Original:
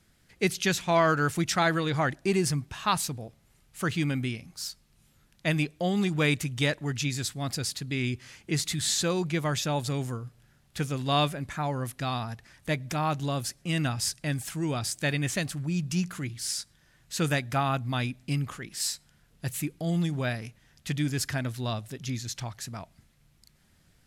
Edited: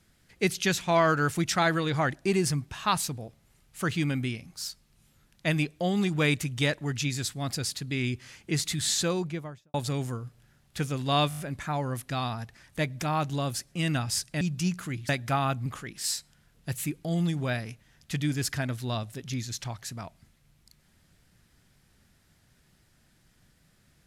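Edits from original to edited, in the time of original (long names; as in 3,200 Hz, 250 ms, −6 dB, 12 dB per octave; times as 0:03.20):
0:09.01–0:09.74: fade out and dull
0:11.29: stutter 0.02 s, 6 plays
0:14.31–0:15.73: remove
0:16.41–0:17.33: remove
0:17.90–0:18.42: remove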